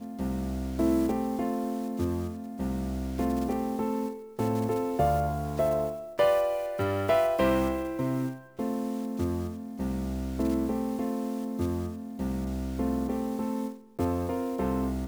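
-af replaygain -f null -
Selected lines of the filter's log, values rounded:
track_gain = +9.6 dB
track_peak = 0.160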